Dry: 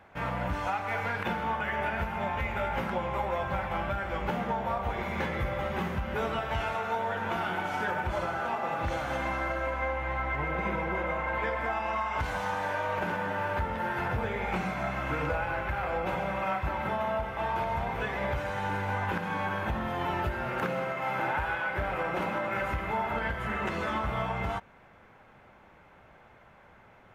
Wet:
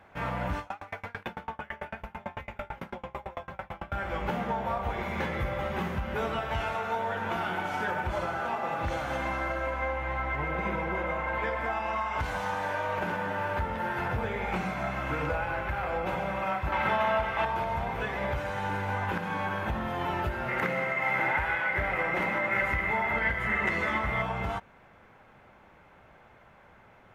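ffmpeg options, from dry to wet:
ffmpeg -i in.wav -filter_complex "[0:a]asettb=1/sr,asplit=3[link_01][link_02][link_03];[link_01]atrim=end=0.594[link_04];[link_02]atrim=start=0.59:end=3.92,asetpts=PTS-STARTPTS,afade=type=in:duration=0.004:curve=qsin,afade=type=out:start_time=3.326:duration=0.004:curve=qsin,aeval=exprs='val(0)*pow(10,-32*if(lt(mod(9*n/s,1),2*abs(9)/1000),1-mod(9*n/s,1)/(2*abs(9)/1000),(mod(9*n/s,1)-2*abs(9)/1000)/(1-2*abs(9)/1000))/20)':channel_layout=same[link_05];[link_03]atrim=start=3.916[link_06];[link_04][link_05]acrossfade=duration=0.004:curve1=hsin:curve2=qsin[link_07];[link_07][link_06]acrossfade=duration=0.004:curve1=qsin:curve2=hsin,asettb=1/sr,asplit=3[link_08][link_09][link_10];[link_08]atrim=end=16.724[link_11];[link_09]atrim=start=16.72:end=17.45,asetpts=PTS-STARTPTS,afade=type=in:duration=0.004:curve=qsin,afade=type=out:start_time=0.726:duration=0.004:curve=qsin,equalizer=frequency=2300:width_type=o:width=2.9:gain=8.5[link_12];[link_10]atrim=start=17.446[link_13];[link_11][link_12]acrossfade=duration=0.004:curve1=hsin:curve2=qsin[link_14];[link_14][link_13]acrossfade=duration=0.004:curve1=qsin:curve2=hsin,asettb=1/sr,asplit=3[link_15][link_16][link_17];[link_15]atrim=end=20.484[link_18];[link_16]atrim=start=20.48:end=24.22,asetpts=PTS-STARTPTS,afade=type=in:duration=0.004:curve=qsin,afade=type=out:start_time=3.736:duration=0.004:curve=qsin,equalizer=frequency=2000:width=6.3:gain=15[link_19];[link_17]atrim=start=24.216[link_20];[link_18][link_19]acrossfade=duration=0.004:curve1=hsin:curve2=qsin[link_21];[link_21][link_20]acrossfade=duration=0.004:curve1=qsin:curve2=hsin" out.wav

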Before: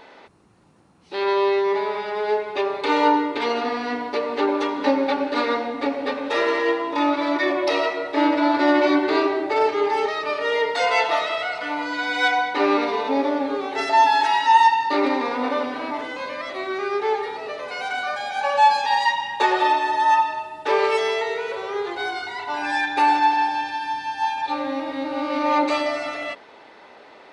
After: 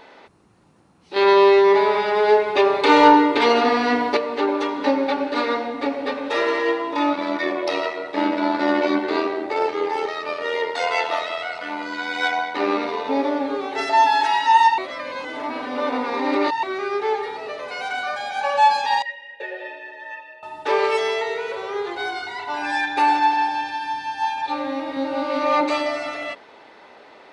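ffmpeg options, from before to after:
ffmpeg -i in.wav -filter_complex "[0:a]asettb=1/sr,asplit=3[link_01][link_02][link_03];[link_01]atrim=end=1.164[link_04];[link_02]atrim=start=1.16:end=4.17,asetpts=PTS-STARTPTS,afade=type=in:duration=0.004:curve=qsin,afade=type=out:start_time=3.006:duration=0.004:curve=qsin,acontrast=83[link_05];[link_03]atrim=start=4.166[link_06];[link_04][link_05]acrossfade=duration=0.004:curve1=hsin:curve2=qsin[link_07];[link_07][link_06]acrossfade=duration=0.004:curve1=qsin:curve2=hsin,asettb=1/sr,asplit=3[link_08][link_09][link_10];[link_08]atrim=end=7.134[link_11];[link_09]atrim=start=7.13:end=13.09,asetpts=PTS-STARTPTS,afade=type=in:duration=0.004:curve=qsin,afade=type=out:start_time=5.956:duration=0.004:curve=qsin,tremolo=f=84:d=0.519[link_12];[link_10]atrim=start=13.086[link_13];[link_11][link_12]acrossfade=duration=0.004:curve1=hsin:curve2=qsin[link_14];[link_14][link_13]acrossfade=duration=0.004:curve1=qsin:curve2=hsin,asettb=1/sr,asplit=3[link_15][link_16][link_17];[link_15]atrim=end=19.024[link_18];[link_16]atrim=start=19.02:end=20.43,asetpts=PTS-STARTPTS,afade=type=in:duration=0.004:curve=qsin,afade=type=out:start_time=1.406:duration=0.004:curve=qsin,asplit=3[link_19][link_20][link_21];[link_19]bandpass=frequency=530:width_type=q:width=8,volume=0dB[link_22];[link_20]bandpass=frequency=1840:width_type=q:width=8,volume=-6dB[link_23];[link_21]bandpass=frequency=2480:width_type=q:width=8,volume=-9dB[link_24];[link_22][link_23][link_24]amix=inputs=3:normalize=0[link_25];[link_17]atrim=start=20.426[link_26];[link_18][link_25]acrossfade=duration=0.004:curve1=hsin:curve2=qsin[link_27];[link_27][link_26]acrossfade=duration=0.004:curve1=qsin:curve2=hsin,asettb=1/sr,asplit=3[link_28][link_29][link_30];[link_28]atrim=end=24.954[link_31];[link_29]atrim=start=24.95:end=25.61,asetpts=PTS-STARTPTS,afade=type=in:duration=0.004:curve=qsin,afade=type=out:start_time=0.656:duration=0.004:curve=qsin,asplit=2[link_32][link_33];[link_33]adelay=15,volume=-4dB[link_34];[link_32][link_34]amix=inputs=2:normalize=0,atrim=end_sample=29106[link_35];[link_30]atrim=start=25.606[link_36];[link_31][link_35]acrossfade=duration=0.004:curve1=hsin:curve2=qsin[link_37];[link_37][link_36]acrossfade=duration=0.004:curve1=qsin:curve2=hsin,asplit=3[link_38][link_39][link_40];[link_38]atrim=end=14.782[link_41];[link_39]atrim=start=14.778:end=16.632,asetpts=PTS-STARTPTS,areverse[link_42];[link_40]atrim=start=16.628[link_43];[link_41][link_42]acrossfade=duration=0.004:curve1=hsin:curve2=hsin[link_44];[link_44][link_43]acrossfade=duration=0.004:curve1=hsin:curve2=hsin" out.wav

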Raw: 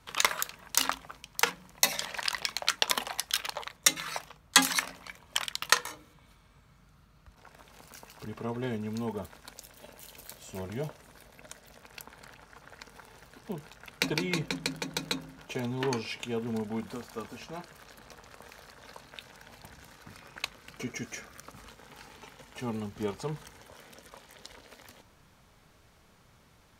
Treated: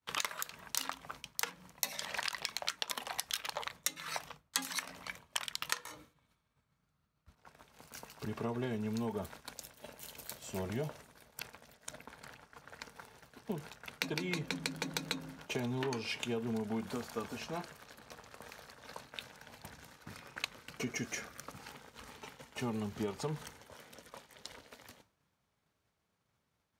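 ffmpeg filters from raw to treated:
ffmpeg -i in.wav -filter_complex "[0:a]asplit=5[link_01][link_02][link_03][link_04][link_05];[link_01]atrim=end=11.342[link_06];[link_02]atrim=start=11.338:end=12.062,asetpts=PTS-STARTPTS,areverse[link_07];[link_03]atrim=start=12.058:end=21.582[link_08];[link_04]atrim=start=21.578:end=22.102,asetpts=PTS-STARTPTS,areverse[link_09];[link_05]atrim=start=22.098[link_10];[link_06][link_07]acrossfade=duration=0.004:curve1=hsin:curve2=hsin[link_11];[link_11][link_08]acrossfade=duration=0.004:curve1=hsin:curve2=hsin[link_12];[link_12][link_09]acrossfade=duration=0.004:curve1=hsin:curve2=hsin[link_13];[link_13][link_10]acrossfade=duration=0.004:curve1=hsin:curve2=hsin,agate=range=-33dB:threshold=-47dB:ratio=3:detection=peak,highpass=69,acompressor=threshold=-34dB:ratio=8,volume=1.5dB" out.wav

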